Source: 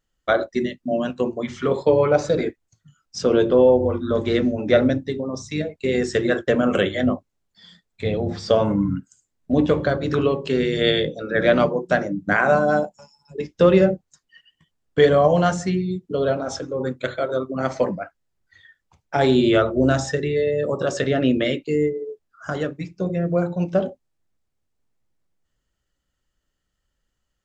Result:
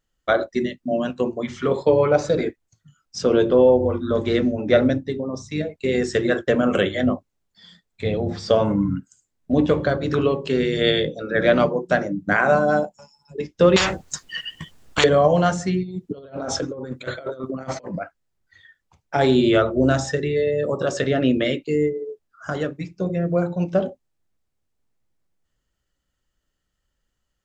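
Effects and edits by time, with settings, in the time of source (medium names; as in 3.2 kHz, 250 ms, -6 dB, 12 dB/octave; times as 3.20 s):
4.36–5.63 s: tape noise reduction on one side only decoder only
13.76–15.04 s: spectrum-flattening compressor 10:1
15.83–17.99 s: compressor with a negative ratio -29 dBFS, ratio -0.5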